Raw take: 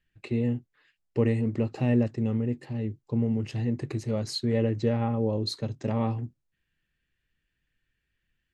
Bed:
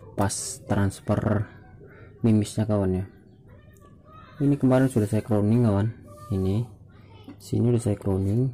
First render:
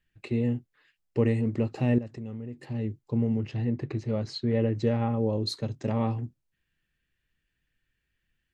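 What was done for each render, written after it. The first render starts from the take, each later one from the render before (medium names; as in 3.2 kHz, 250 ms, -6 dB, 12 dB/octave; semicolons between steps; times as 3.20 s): 1.98–2.62 s: compression 2.5:1, threshold -39 dBFS; 3.40–4.76 s: distance through air 140 m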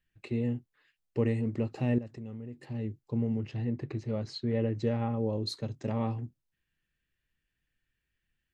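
trim -4 dB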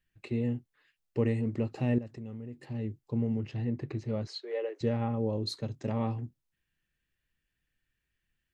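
4.27–4.81 s: steep high-pass 380 Hz 48 dB/octave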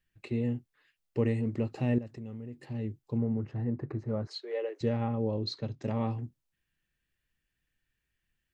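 3.18–4.31 s: resonant high shelf 2 kHz -11 dB, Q 1.5; 5.07–5.82 s: low-pass 5.6 kHz 24 dB/octave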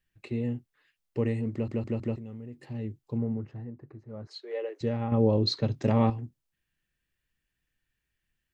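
1.52 s: stutter in place 0.16 s, 4 plays; 3.29–4.54 s: dip -11.5 dB, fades 0.45 s; 5.12–6.10 s: gain +8 dB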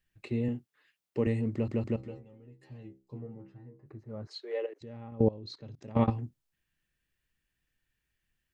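0.48–1.27 s: high-pass 140 Hz; 1.96–3.86 s: inharmonic resonator 64 Hz, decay 0.36 s, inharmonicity 0.002; 4.66–6.08 s: level held to a coarse grid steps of 22 dB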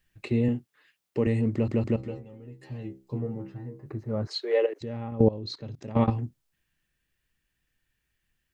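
in parallel at +3 dB: peak limiter -23 dBFS, peak gain reduction 9.5 dB; on the sum: gain riding within 5 dB 2 s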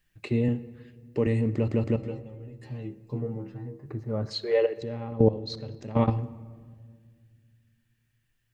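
simulated room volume 2700 m³, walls mixed, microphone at 0.4 m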